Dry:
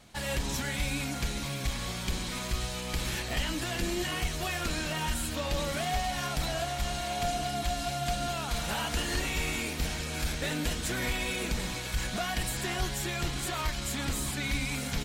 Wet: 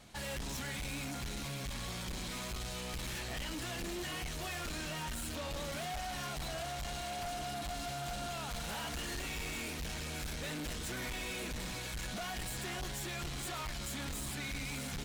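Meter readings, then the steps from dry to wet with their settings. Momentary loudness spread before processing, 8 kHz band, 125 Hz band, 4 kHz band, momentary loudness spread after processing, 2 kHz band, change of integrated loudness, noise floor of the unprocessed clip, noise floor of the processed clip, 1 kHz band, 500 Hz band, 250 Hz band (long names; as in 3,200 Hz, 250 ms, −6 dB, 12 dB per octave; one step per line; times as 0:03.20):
3 LU, −7.0 dB, −8.5 dB, −7.5 dB, 1 LU, −7.5 dB, −7.5 dB, −36 dBFS, −41 dBFS, −7.5 dB, −8.0 dB, −8.0 dB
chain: soft clipping −36.5 dBFS, distortion −7 dB
level −1 dB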